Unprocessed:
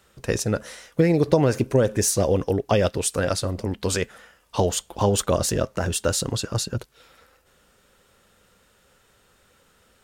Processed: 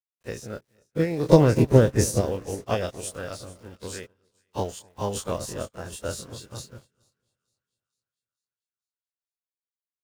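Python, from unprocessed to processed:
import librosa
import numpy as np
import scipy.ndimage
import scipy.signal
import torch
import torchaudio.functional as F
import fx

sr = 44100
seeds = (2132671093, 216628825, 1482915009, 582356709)

y = fx.spec_dilate(x, sr, span_ms=60)
y = fx.low_shelf(y, sr, hz=180.0, db=9.5, at=(1.32, 2.21))
y = np.where(np.abs(y) >= 10.0 ** (-31.0 / 20.0), y, 0.0)
y = fx.echo_split(y, sr, split_hz=1200.0, low_ms=250, high_ms=448, feedback_pct=52, wet_db=-12)
y = fx.upward_expand(y, sr, threshold_db=-35.0, expansion=2.5)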